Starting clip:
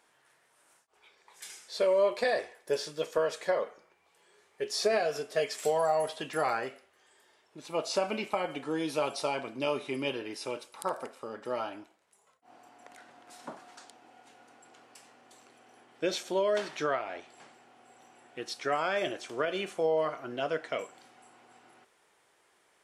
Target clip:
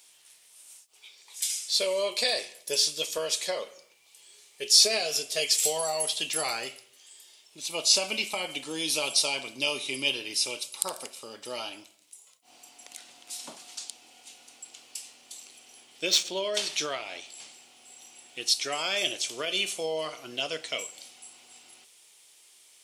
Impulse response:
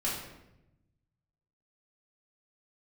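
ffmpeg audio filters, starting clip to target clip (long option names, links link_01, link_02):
-filter_complex "[0:a]aexciter=amount=7.5:drive=5.9:freq=2400,asettb=1/sr,asplit=3[link_01][link_02][link_03];[link_01]atrim=end=16.054[link_04];[link_02]atrim=start=16.05:end=16.54,asetpts=PTS-STARTPTS,afade=type=in:duration=0.004:curve=qsin,afade=type=out:start_time=0.486:duration=0.004:curve=qsin,adynamicsmooth=sensitivity=1.5:basefreq=4000[link_05];[link_03]atrim=start=16.536[link_06];[link_04][link_05]acrossfade=duration=0.004:curve1=hsin:curve2=qsin[link_07];[link_07][link_06]acrossfade=duration=0.004:curve1=qsin:curve2=hsin,asplit=2[link_08][link_09];[1:a]atrim=start_sample=2205,afade=type=out:start_time=0.37:duration=0.01,atrim=end_sample=16758[link_10];[link_09][link_10]afir=irnorm=-1:irlink=0,volume=-24dB[link_11];[link_08][link_11]amix=inputs=2:normalize=0,volume=-4.5dB"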